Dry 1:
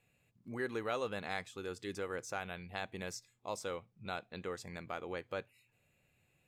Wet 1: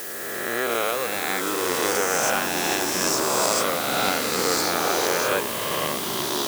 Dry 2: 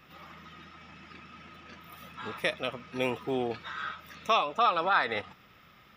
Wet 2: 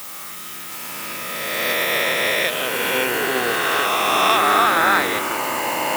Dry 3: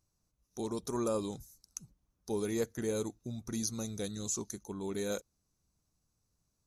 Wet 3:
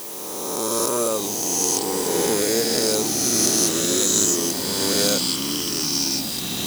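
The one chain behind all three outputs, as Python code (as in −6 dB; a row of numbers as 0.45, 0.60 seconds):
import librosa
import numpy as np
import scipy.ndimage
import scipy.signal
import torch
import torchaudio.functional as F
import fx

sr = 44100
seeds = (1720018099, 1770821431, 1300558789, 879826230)

p1 = fx.spec_swells(x, sr, rise_s=2.99)
p2 = fx.recorder_agc(p1, sr, target_db=-15.0, rise_db_per_s=7.6, max_gain_db=30)
p3 = fx.quant_dither(p2, sr, seeds[0], bits=6, dither='triangular')
p4 = p2 + (p3 * librosa.db_to_amplitude(-5.5))
p5 = fx.echo_pitch(p4, sr, ms=713, semitones=-4, count=3, db_per_echo=-3.0)
p6 = fx.highpass(p5, sr, hz=300.0, slope=6)
y = fx.high_shelf(p6, sr, hz=5800.0, db=9.0)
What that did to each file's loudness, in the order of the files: +19.5, +11.5, +17.0 LU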